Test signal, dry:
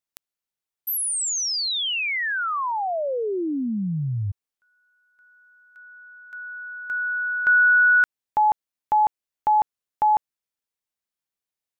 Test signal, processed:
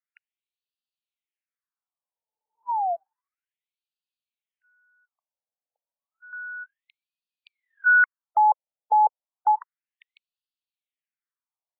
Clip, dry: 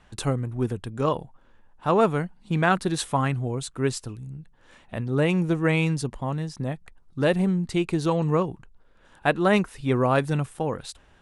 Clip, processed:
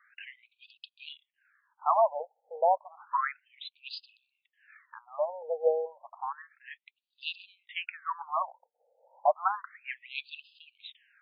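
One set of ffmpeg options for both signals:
-af "lowshelf=f=270:g=10,afftfilt=real='re*between(b*sr/1024,620*pow(3600/620,0.5+0.5*sin(2*PI*0.31*pts/sr))/1.41,620*pow(3600/620,0.5+0.5*sin(2*PI*0.31*pts/sr))*1.41)':imag='im*between(b*sr/1024,620*pow(3600/620,0.5+0.5*sin(2*PI*0.31*pts/sr))/1.41,620*pow(3600/620,0.5+0.5*sin(2*PI*0.31*pts/sr))*1.41)':win_size=1024:overlap=0.75"

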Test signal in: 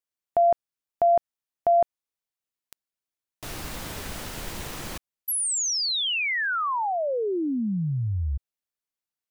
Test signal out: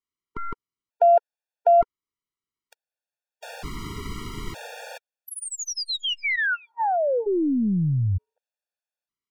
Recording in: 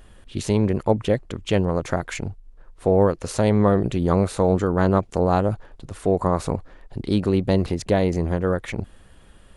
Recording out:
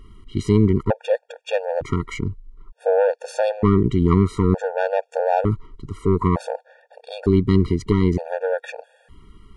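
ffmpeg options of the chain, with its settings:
-af "aemphasis=mode=reproduction:type=50kf,aeval=exprs='(tanh(3.55*val(0)+0.45)-tanh(0.45))/3.55':c=same,afftfilt=real='re*gt(sin(2*PI*0.55*pts/sr)*(1-2*mod(floor(b*sr/1024/470),2)),0)':imag='im*gt(sin(2*PI*0.55*pts/sr)*(1-2*mod(floor(b*sr/1024/470),2)),0)':win_size=1024:overlap=0.75,volume=6dB"

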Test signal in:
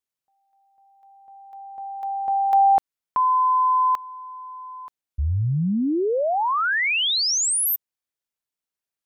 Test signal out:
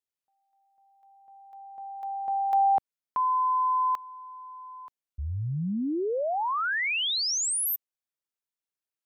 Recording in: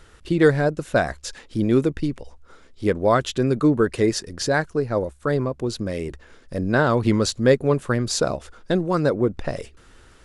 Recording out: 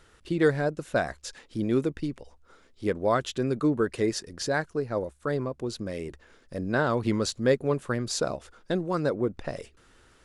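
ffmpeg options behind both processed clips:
-af "lowshelf=f=95:g=-6,volume=-6dB"

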